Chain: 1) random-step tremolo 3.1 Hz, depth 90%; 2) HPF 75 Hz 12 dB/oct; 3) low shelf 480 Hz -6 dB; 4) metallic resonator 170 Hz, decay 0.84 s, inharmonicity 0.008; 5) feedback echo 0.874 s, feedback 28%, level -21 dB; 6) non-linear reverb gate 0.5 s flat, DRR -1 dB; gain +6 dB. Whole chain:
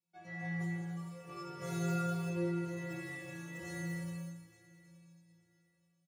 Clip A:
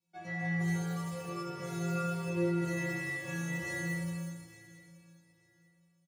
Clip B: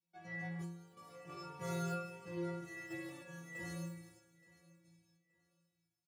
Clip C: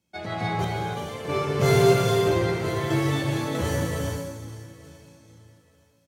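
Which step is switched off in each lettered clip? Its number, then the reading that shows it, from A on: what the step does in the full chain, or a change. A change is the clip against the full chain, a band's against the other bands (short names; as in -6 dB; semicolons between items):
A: 1, momentary loudness spread change -1 LU; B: 6, momentary loudness spread change +2 LU; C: 4, 4 kHz band +7.5 dB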